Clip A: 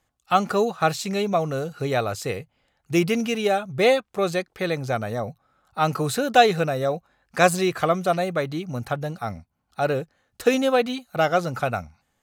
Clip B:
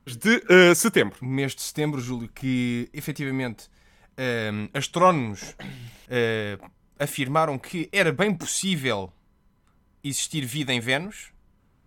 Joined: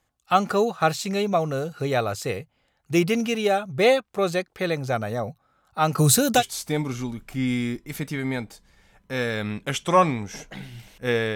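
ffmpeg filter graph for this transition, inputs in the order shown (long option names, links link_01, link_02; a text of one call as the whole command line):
ffmpeg -i cue0.wav -i cue1.wav -filter_complex "[0:a]asettb=1/sr,asplit=3[link_01][link_02][link_03];[link_01]atrim=end=5.984[link_04];[link_02]atrim=start=5.98:end=6.43,asetpts=PTS-STARTPTS,afade=type=in:duration=0.004:curve=qsin,afade=type=out:start_time=0.446:duration=0.004:curve=qsin,bass=frequency=250:gain=11,treble=frequency=4000:gain=14[link_05];[link_03]atrim=start=6.426[link_06];[link_04][link_05]acrossfade=duration=0.004:curve1=hsin:curve2=qsin[link_07];[link_07][link_06]acrossfade=duration=0.004:curve1=qsin:curve2=hsin,apad=whole_dur=11.35,atrim=end=11.35,atrim=end=6.43,asetpts=PTS-STARTPTS[link_08];[1:a]atrim=start=1.43:end=6.43,asetpts=PTS-STARTPTS[link_09];[link_08][link_09]acrossfade=duration=0.08:curve1=tri:curve2=tri" out.wav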